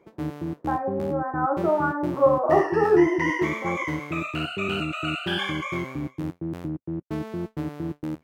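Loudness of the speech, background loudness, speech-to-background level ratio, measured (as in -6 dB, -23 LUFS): -23.5 LUFS, -30.0 LUFS, 6.5 dB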